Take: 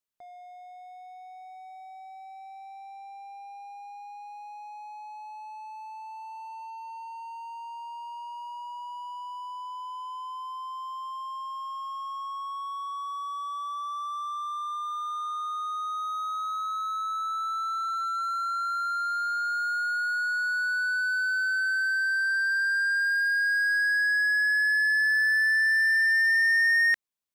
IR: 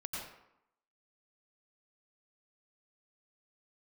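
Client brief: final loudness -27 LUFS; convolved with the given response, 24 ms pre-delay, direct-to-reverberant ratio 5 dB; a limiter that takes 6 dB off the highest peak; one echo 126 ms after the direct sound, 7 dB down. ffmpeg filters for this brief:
-filter_complex "[0:a]alimiter=limit=0.0668:level=0:latency=1,aecho=1:1:126:0.447,asplit=2[s0][s1];[1:a]atrim=start_sample=2205,adelay=24[s2];[s1][s2]afir=irnorm=-1:irlink=0,volume=0.501[s3];[s0][s3]amix=inputs=2:normalize=0,volume=1.06"

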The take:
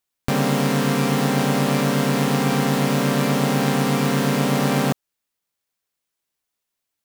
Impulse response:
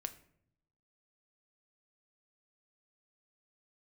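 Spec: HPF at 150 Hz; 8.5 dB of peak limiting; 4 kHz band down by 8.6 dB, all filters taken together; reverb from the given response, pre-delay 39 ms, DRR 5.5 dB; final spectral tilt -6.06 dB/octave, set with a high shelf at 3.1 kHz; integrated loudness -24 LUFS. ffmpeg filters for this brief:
-filter_complex "[0:a]highpass=150,highshelf=f=3100:g=-6,equalizer=f=4000:t=o:g=-7,alimiter=limit=0.2:level=0:latency=1,asplit=2[s0][s1];[1:a]atrim=start_sample=2205,adelay=39[s2];[s1][s2]afir=irnorm=-1:irlink=0,volume=0.668[s3];[s0][s3]amix=inputs=2:normalize=0,volume=0.891"

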